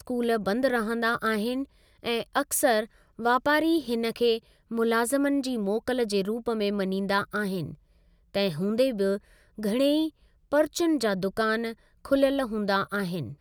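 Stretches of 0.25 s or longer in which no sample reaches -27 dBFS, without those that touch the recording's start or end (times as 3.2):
1.62–2.05
2.83–3.25
4.37–4.72
7.66–8.36
9.16–9.63
10.07–10.53
11.71–12.11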